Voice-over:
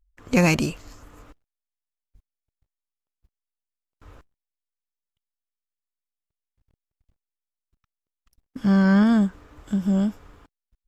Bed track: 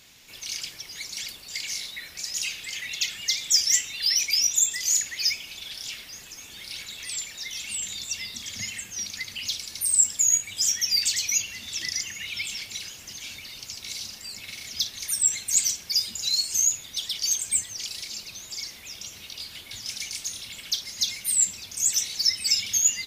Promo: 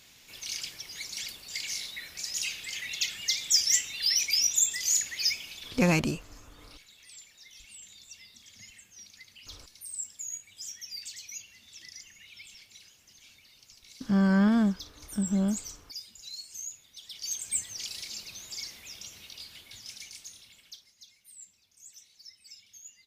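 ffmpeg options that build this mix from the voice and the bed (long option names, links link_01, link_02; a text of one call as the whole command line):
ffmpeg -i stem1.wav -i stem2.wav -filter_complex "[0:a]adelay=5450,volume=-5.5dB[link_01];[1:a]volume=10.5dB,afade=type=out:start_time=5.46:duration=0.54:silence=0.188365,afade=type=in:start_time=17.01:duration=0.74:silence=0.211349,afade=type=out:start_time=18.63:duration=2.32:silence=0.0630957[link_02];[link_01][link_02]amix=inputs=2:normalize=0" out.wav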